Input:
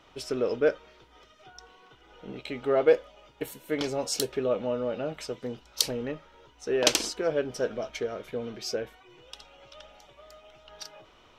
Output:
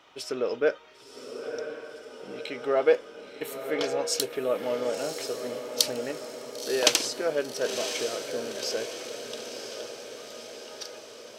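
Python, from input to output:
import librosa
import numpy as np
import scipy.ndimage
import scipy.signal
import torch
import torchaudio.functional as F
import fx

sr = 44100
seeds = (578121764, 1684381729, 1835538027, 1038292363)

y = fx.highpass(x, sr, hz=450.0, slope=6)
y = fx.echo_diffused(y, sr, ms=1012, feedback_pct=58, wet_db=-8)
y = F.gain(torch.from_numpy(y), 2.0).numpy()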